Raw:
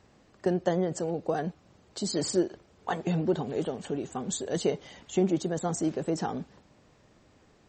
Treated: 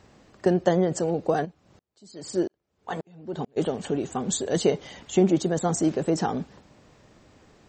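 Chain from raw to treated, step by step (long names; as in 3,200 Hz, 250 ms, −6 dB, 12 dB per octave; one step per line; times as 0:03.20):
0:01.44–0:03.56: tremolo with a ramp in dB swelling 1.1 Hz → 2.6 Hz, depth 38 dB
level +5.5 dB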